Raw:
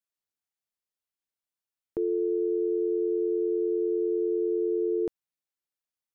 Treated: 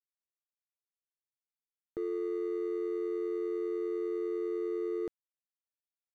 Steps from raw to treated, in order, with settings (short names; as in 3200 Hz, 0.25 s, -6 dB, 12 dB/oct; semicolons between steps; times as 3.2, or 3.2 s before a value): median filter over 41 samples; gain -6.5 dB